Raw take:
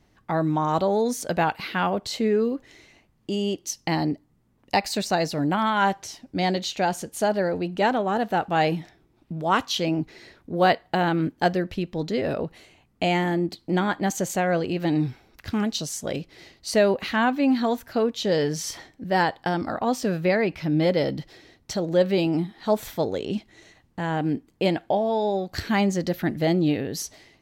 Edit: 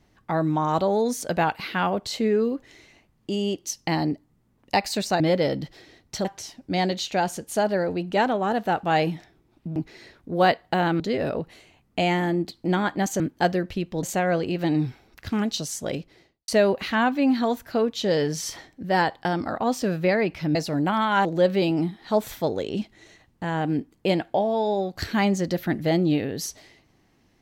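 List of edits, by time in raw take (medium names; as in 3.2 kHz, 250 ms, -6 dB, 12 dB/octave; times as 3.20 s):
5.20–5.90 s: swap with 20.76–21.81 s
9.41–9.97 s: delete
11.21–12.04 s: move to 14.24 s
16.12–16.69 s: studio fade out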